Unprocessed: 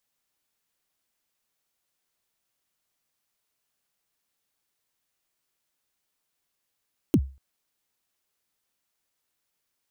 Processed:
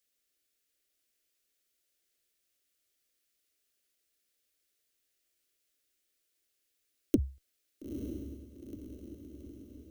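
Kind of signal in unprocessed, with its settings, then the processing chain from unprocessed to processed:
kick drum length 0.24 s, from 360 Hz, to 67 Hz, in 59 ms, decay 0.33 s, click on, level -12 dB
single-diode clipper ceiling -12 dBFS; static phaser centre 380 Hz, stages 4; on a send: echo that smears into a reverb 915 ms, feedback 58%, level -7 dB

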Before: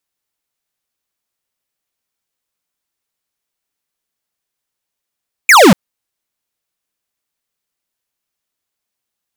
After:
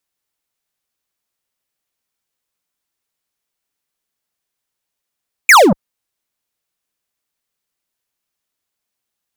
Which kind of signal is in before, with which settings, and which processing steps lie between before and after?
laser zap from 2.5 kHz, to 160 Hz, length 0.24 s square, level -4.5 dB
transformer saturation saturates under 380 Hz

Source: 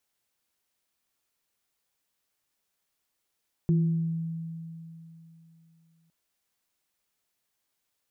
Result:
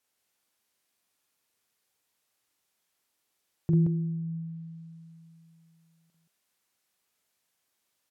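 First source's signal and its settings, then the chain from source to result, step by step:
sine partials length 2.41 s, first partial 164 Hz, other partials 345 Hz, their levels -10.5 dB, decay 3.14 s, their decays 0.80 s, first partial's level -19 dB
high-pass 98 Hz 6 dB/octave; low-pass that closes with the level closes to 600 Hz, closed at -30 dBFS; loudspeakers at several distances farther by 15 m -3 dB, 60 m -3 dB

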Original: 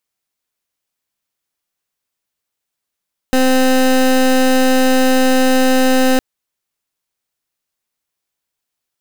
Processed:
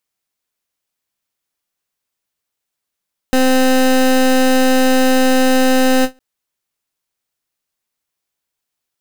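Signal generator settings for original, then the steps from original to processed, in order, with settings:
pulse 259 Hz, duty 23% -11.5 dBFS 2.86 s
endings held to a fixed fall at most 420 dB/s

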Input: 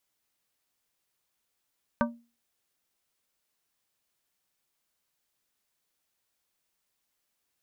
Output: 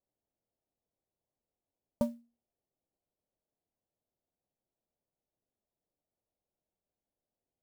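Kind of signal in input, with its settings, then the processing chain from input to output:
glass hit plate, lowest mode 235 Hz, modes 5, decay 0.33 s, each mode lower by 1 dB, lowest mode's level -22 dB
Chebyshev low-pass 680 Hz, order 3; sampling jitter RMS 0.026 ms

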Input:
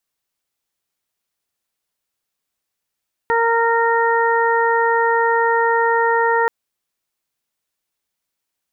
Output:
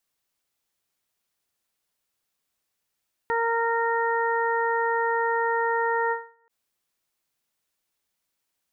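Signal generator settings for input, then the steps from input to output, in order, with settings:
steady additive tone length 3.18 s, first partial 462 Hz, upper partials 1/-5/-3 dB, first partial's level -18 dB
peak limiter -17.5 dBFS; endings held to a fixed fall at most 160 dB/s

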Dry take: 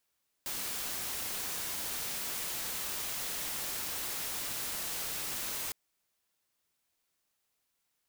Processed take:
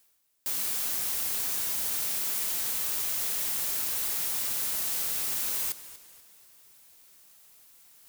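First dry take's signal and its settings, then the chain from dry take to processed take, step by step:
noise white, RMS -37 dBFS 5.26 s
treble shelf 6.8 kHz +9 dB; reverse; upward compressor, threshold -41 dBFS; reverse; modulated delay 242 ms, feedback 40%, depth 87 cents, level -14.5 dB

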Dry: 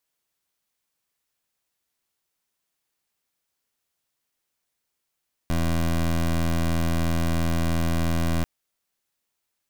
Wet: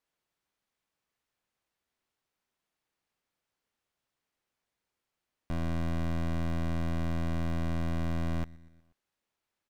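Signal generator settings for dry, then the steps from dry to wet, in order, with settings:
pulse 83 Hz, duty 19% -22.5 dBFS 2.94 s
low-pass 2.3 kHz 6 dB/octave; peak limiter -30.5 dBFS; feedback delay 121 ms, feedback 58%, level -22.5 dB

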